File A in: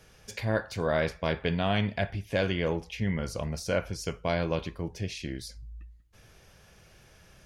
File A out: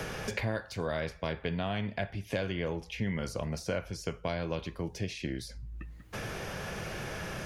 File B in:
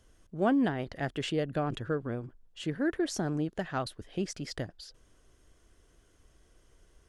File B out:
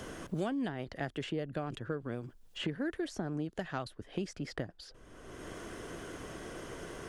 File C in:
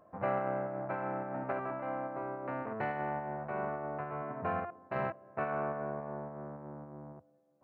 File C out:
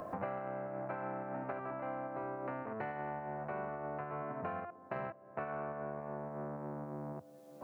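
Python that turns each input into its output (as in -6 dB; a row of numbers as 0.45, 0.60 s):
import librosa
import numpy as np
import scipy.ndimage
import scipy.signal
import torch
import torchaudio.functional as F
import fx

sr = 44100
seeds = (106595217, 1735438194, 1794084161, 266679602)

y = fx.band_squash(x, sr, depth_pct=100)
y = F.gain(torch.from_numpy(y), -5.0).numpy()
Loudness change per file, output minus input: -5.0, -6.5, -4.0 LU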